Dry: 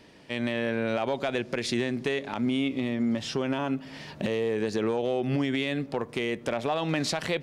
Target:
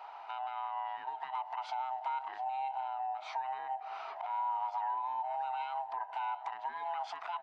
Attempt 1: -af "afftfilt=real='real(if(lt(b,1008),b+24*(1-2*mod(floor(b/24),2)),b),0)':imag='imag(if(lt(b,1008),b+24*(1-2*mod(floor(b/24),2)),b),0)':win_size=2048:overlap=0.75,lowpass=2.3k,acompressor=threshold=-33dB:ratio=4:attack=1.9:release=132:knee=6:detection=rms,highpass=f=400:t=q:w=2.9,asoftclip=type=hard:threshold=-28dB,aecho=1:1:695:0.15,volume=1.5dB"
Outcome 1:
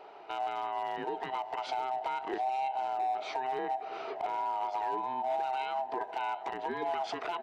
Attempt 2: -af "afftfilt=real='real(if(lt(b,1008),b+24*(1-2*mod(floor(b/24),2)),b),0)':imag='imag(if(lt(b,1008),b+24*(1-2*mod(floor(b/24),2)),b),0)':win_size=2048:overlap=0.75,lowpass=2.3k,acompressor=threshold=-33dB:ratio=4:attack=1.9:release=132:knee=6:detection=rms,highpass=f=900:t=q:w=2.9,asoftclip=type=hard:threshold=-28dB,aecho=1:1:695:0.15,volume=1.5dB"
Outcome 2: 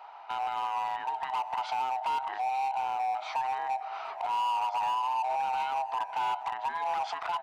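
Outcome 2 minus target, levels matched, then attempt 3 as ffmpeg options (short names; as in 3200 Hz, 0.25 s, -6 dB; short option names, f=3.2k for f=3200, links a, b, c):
compressor: peak gain reduction -8 dB
-af "afftfilt=real='real(if(lt(b,1008),b+24*(1-2*mod(floor(b/24),2)),b),0)':imag='imag(if(lt(b,1008),b+24*(1-2*mod(floor(b/24),2)),b),0)':win_size=2048:overlap=0.75,lowpass=2.3k,acompressor=threshold=-43.5dB:ratio=4:attack=1.9:release=132:knee=6:detection=rms,highpass=f=900:t=q:w=2.9,asoftclip=type=hard:threshold=-28dB,aecho=1:1:695:0.15,volume=1.5dB"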